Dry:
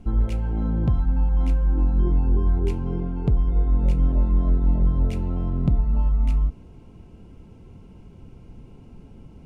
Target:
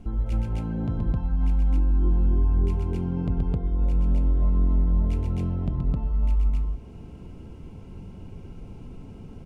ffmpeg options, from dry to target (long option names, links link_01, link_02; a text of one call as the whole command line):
ffmpeg -i in.wav -af "acompressor=threshold=-30dB:ratio=2,aecho=1:1:125.4|262.4:0.631|1" out.wav